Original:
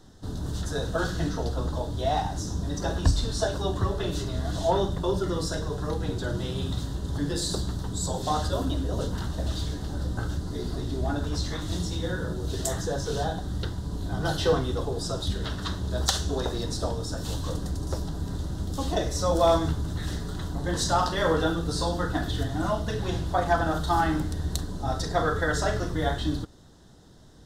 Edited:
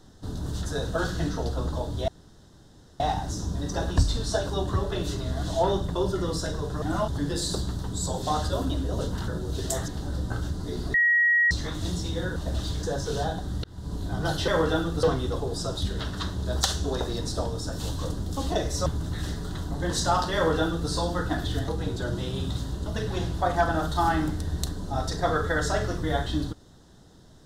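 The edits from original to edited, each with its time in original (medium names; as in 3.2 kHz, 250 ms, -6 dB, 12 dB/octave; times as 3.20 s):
2.08 s: insert room tone 0.92 s
5.90–7.08 s: swap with 22.52–22.78 s
9.28–9.75 s: swap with 12.23–12.83 s
10.81–11.38 s: bleep 1.9 kHz -17.5 dBFS
13.64–13.92 s: fade in
17.65–18.61 s: delete
19.27–19.70 s: delete
21.19–21.74 s: copy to 14.48 s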